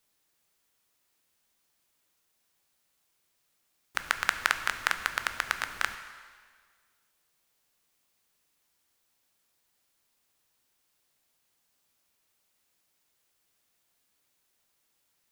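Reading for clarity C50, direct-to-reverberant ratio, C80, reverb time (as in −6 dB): 10.5 dB, 8.5 dB, 11.5 dB, 1.7 s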